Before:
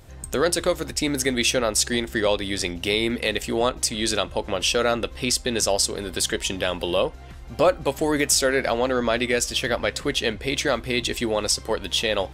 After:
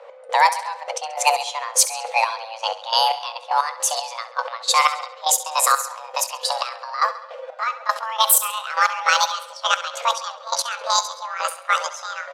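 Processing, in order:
pitch glide at a constant tempo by +10 semitones starting unshifted
frequency shifter +450 Hz
gate pattern "x..xx...." 154 BPM −12 dB
on a send: repeating echo 68 ms, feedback 59%, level −14 dB
on the sum: low-pass that shuts in the quiet parts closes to 2,300 Hz, open at −19.5 dBFS
level +6.5 dB

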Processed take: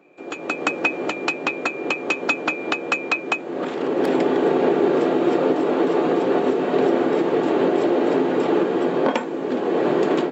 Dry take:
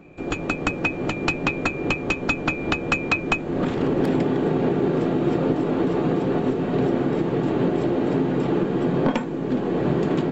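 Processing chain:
Chebyshev high-pass filter 410 Hz, order 2
automatic gain control gain up to 10.5 dB
level −3.5 dB

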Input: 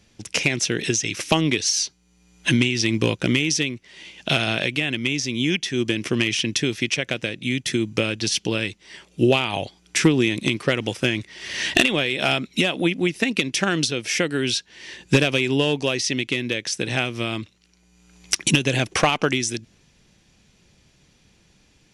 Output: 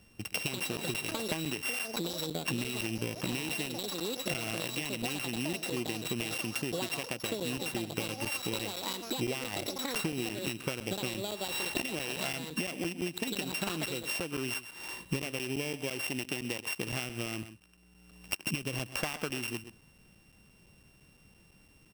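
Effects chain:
samples sorted by size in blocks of 16 samples
single-tap delay 126 ms −17.5 dB
delay with pitch and tempo change per echo 214 ms, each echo +6 semitones, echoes 2, each echo −6 dB
downward compressor 6 to 1, threshold −29 dBFS, peak gain reduction 17 dB
regular buffer underruns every 0.17 s, samples 256, zero, from 0:00.60
level −2.5 dB

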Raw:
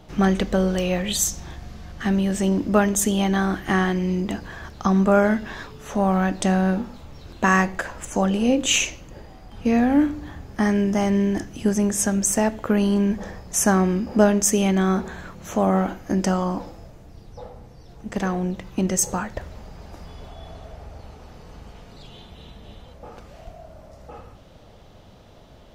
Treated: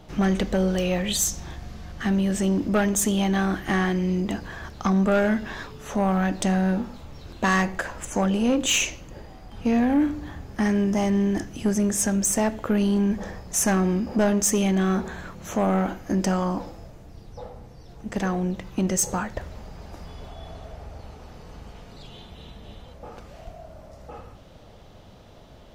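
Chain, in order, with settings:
soft clipping −14.5 dBFS, distortion −14 dB

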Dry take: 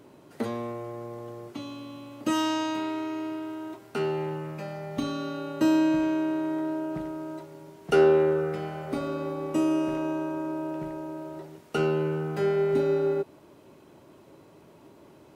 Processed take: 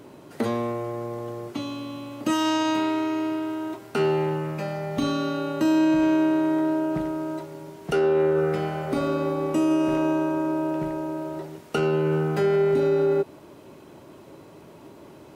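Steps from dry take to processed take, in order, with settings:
brickwall limiter −21 dBFS, peak gain reduction 11.5 dB
level +6.5 dB

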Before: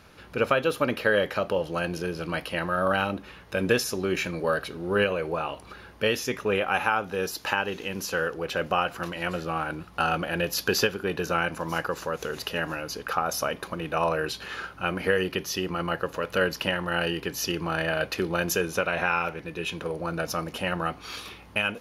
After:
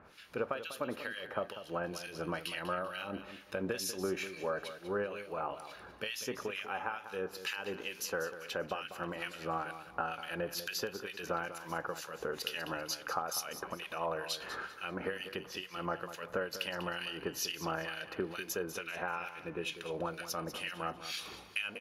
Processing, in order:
low-shelf EQ 190 Hz −10 dB
downward compressor 5 to 1, threshold −30 dBFS, peak gain reduction 11.5 dB
two-band tremolo in antiphase 2.2 Hz, depth 100%, crossover 1,700 Hz
repeating echo 195 ms, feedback 31%, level −12 dB

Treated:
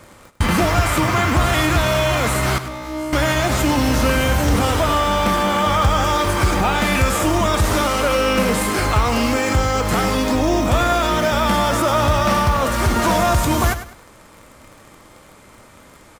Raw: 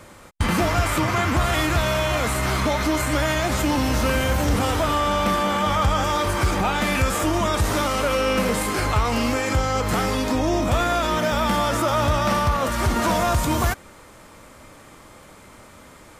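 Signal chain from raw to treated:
in parallel at −5.5 dB: bit reduction 6 bits
0:02.58–0:03.13: on the sum: tuned comb filter 62 Hz, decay 1.2 s, harmonics all, mix 100%
repeating echo 100 ms, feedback 29%, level −12 dB

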